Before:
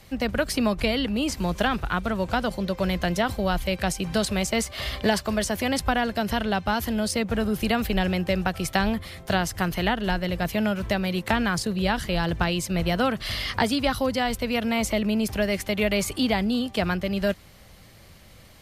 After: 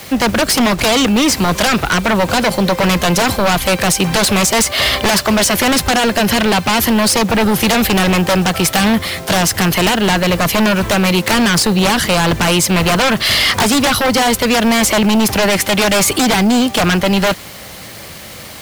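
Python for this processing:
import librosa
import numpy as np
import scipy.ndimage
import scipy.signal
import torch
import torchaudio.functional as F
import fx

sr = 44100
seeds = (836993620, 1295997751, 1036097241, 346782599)

p1 = fx.highpass(x, sr, hz=240.0, slope=6)
p2 = fx.fold_sine(p1, sr, drive_db=17, ceiling_db=-8.5)
p3 = p1 + F.gain(torch.from_numpy(p2), -4.0).numpy()
p4 = fx.quant_dither(p3, sr, seeds[0], bits=6, dither='none')
y = F.gain(torch.from_numpy(p4), 2.0).numpy()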